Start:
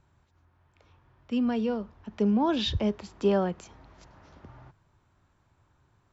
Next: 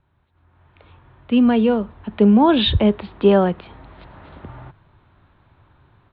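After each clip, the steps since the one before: steep low-pass 4000 Hz 72 dB/oct; AGC gain up to 12 dB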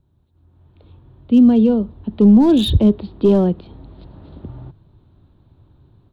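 high shelf 2100 Hz +9 dB; hard clip -9.5 dBFS, distortion -16 dB; EQ curve 320 Hz 0 dB, 2100 Hz -25 dB, 4300 Hz -10 dB; gain +4.5 dB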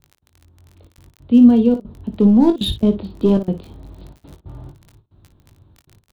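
step gate "x.xxxxxx.x.xxxx" 138 bpm -24 dB; crackle 17/s -31 dBFS; on a send: early reflections 21 ms -7.5 dB, 57 ms -11.5 dB; on the sum: gain -1 dB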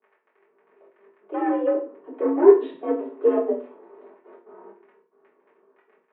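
hard clip -7 dBFS, distortion -17 dB; reverb RT60 0.40 s, pre-delay 3 ms, DRR -6.5 dB; mistuned SSB +69 Hz 300–2100 Hz; gain -7.5 dB

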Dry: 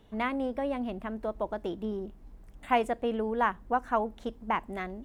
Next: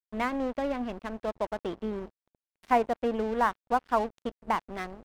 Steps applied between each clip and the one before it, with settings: treble ducked by the level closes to 1700 Hz, closed at -24.5 dBFS; crossover distortion -41.5 dBFS; gain +3 dB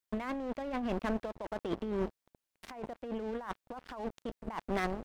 negative-ratio compressor -37 dBFS, ratio -1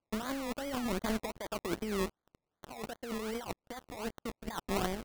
decimation with a swept rate 23×, swing 60% 2.6 Hz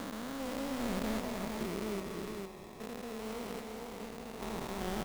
stepped spectrum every 0.4 s; on a send: tapped delay 0.273/0.456 s -9.5/-4 dB; on the sum: gain +1 dB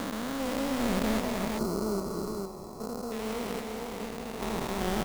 spectral gain 1.58–3.12, 1500–4000 Hz -17 dB; gain +7 dB

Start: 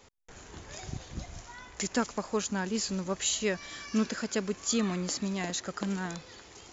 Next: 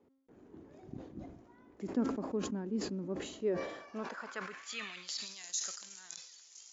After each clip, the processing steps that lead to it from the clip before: band-pass sweep 290 Hz -> 6200 Hz, 3.33–5.46; de-hum 268.2 Hz, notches 30; sustainer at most 65 dB/s; gain +1 dB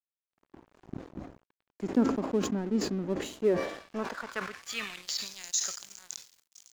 crossover distortion -51.5 dBFS; gain +8 dB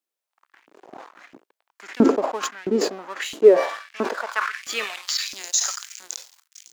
LFO high-pass saw up 1.5 Hz 270–2500 Hz; gain +8 dB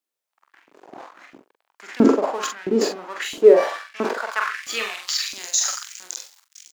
doubler 44 ms -5 dB

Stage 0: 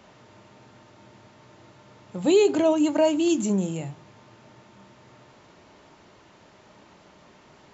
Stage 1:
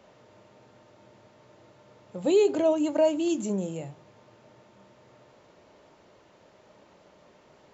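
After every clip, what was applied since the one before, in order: bell 530 Hz +8 dB 0.73 oct; gain -6.5 dB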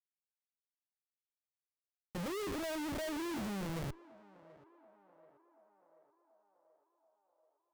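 Schmitt trigger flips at -36.5 dBFS; narrowing echo 0.733 s, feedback 68%, band-pass 730 Hz, level -17.5 dB; gain -7.5 dB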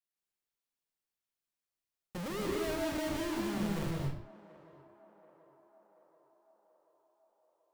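reverb, pre-delay 0.15 s, DRR -0.5 dB

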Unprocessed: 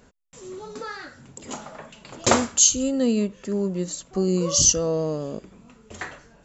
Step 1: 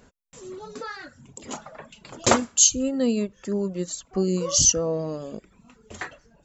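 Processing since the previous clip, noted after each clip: reverb removal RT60 0.73 s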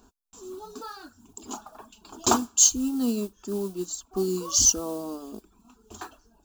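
modulation noise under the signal 21 dB; fixed phaser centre 540 Hz, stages 6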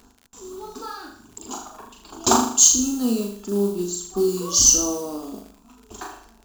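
on a send: flutter echo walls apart 6.8 m, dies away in 0.59 s; on the sum: crackle 73/s -40 dBFS; gain +3 dB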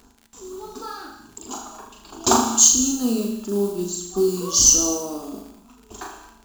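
non-linear reverb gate 0.26 s flat, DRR 9.5 dB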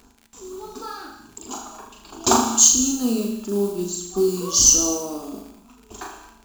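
bell 2400 Hz +3.5 dB 0.26 oct

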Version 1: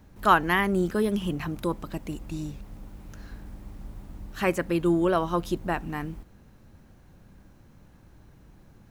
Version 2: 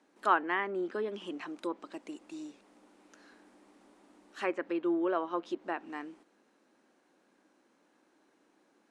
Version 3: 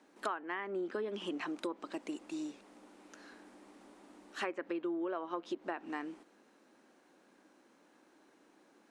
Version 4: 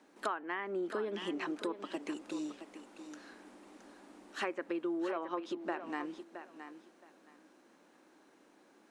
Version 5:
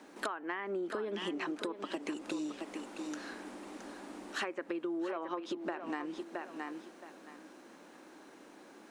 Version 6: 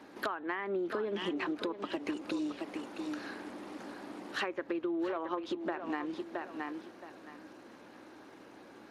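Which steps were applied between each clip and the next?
elliptic band-pass 290–9400 Hz, stop band 40 dB; treble ducked by the level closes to 2400 Hz, closed at -23 dBFS; gain -6.5 dB
compressor 16:1, threshold -37 dBFS, peak gain reduction 18 dB; gain +3.5 dB
thinning echo 0.669 s, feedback 21%, high-pass 170 Hz, level -10 dB; gain +1 dB
compressor 5:1, threshold -44 dBFS, peak gain reduction 13 dB; gain +9 dB
buzz 60 Hz, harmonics 5, -72 dBFS -1 dB/oct; gain +2 dB; Speex 28 kbps 32000 Hz

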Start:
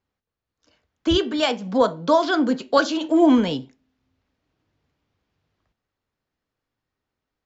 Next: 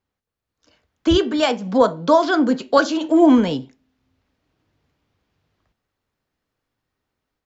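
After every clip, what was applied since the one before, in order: dynamic EQ 3400 Hz, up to -4 dB, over -37 dBFS, Q 1.1; AGC gain up to 4 dB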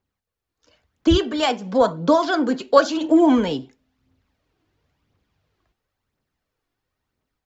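phaser 0.97 Hz, delay 3 ms, feedback 41%; gain -1.5 dB

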